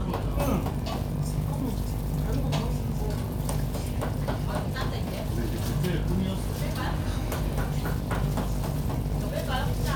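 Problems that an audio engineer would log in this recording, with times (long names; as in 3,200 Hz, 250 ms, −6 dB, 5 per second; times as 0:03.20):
mains buzz 50 Hz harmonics 21 −33 dBFS
surface crackle 57 per second −33 dBFS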